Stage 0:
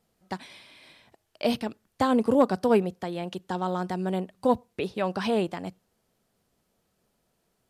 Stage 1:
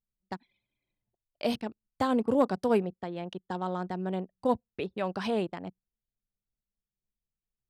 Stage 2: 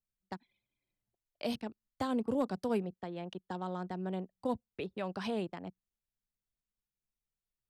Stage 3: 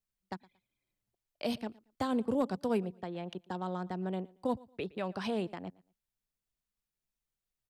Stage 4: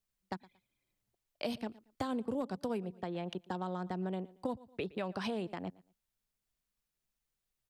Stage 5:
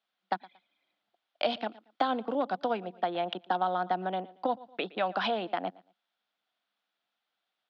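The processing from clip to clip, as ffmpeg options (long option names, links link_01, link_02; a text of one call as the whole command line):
ffmpeg -i in.wav -af "anlmdn=1,volume=-4dB" out.wav
ffmpeg -i in.wav -filter_complex "[0:a]acrossover=split=260|3000[link_01][link_02][link_03];[link_02]acompressor=threshold=-36dB:ratio=1.5[link_04];[link_01][link_04][link_03]amix=inputs=3:normalize=0,volume=-4dB" out.wav
ffmpeg -i in.wav -af "aecho=1:1:115|230:0.0708|0.0177,volume=1.5dB" out.wav
ffmpeg -i in.wav -af "acompressor=threshold=-36dB:ratio=4,volume=2.5dB" out.wav
ffmpeg -i in.wav -af "highpass=frequency=240:width=0.5412,highpass=frequency=240:width=1.3066,equalizer=frequency=240:width_type=q:width=4:gain=-4,equalizer=frequency=400:width_type=q:width=4:gain=-8,equalizer=frequency=730:width_type=q:width=4:gain=9,equalizer=frequency=1400:width_type=q:width=4:gain=7,equalizer=frequency=3400:width_type=q:width=4:gain=7,lowpass=frequency=4200:width=0.5412,lowpass=frequency=4200:width=1.3066,volume=7dB" out.wav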